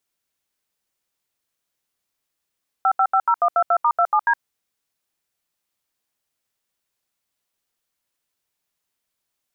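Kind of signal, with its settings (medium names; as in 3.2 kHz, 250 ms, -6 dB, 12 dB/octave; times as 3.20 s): DTMF "5550122*27D", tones 66 ms, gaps 76 ms, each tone -16.5 dBFS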